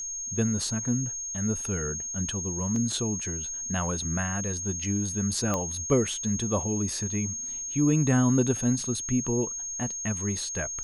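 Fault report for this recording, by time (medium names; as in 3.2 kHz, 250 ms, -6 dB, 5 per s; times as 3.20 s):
whine 6.5 kHz -32 dBFS
2.76 s: dropout 2.1 ms
5.54 s: pop -14 dBFS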